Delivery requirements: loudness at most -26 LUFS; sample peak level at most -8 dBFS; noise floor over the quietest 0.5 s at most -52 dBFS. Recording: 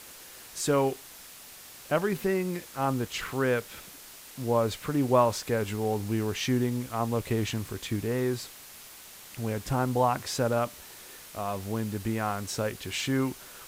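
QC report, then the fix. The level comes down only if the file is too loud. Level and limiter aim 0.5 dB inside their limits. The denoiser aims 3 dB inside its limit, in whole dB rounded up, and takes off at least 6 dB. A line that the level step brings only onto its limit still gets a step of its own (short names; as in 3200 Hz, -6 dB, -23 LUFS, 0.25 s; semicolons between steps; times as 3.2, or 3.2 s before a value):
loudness -29.5 LUFS: OK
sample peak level -10.0 dBFS: OK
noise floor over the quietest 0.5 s -48 dBFS: fail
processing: denoiser 7 dB, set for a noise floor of -48 dBFS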